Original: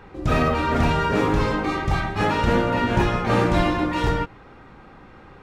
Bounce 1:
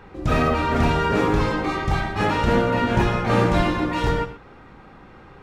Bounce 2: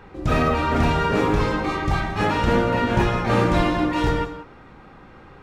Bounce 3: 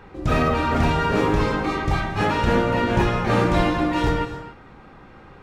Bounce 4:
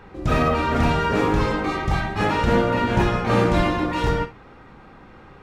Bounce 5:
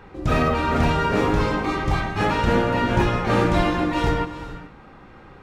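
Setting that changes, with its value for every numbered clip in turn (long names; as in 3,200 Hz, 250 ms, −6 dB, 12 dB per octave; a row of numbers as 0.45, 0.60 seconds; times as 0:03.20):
reverb whose tail is shaped and stops, gate: 140, 210, 310, 80, 460 milliseconds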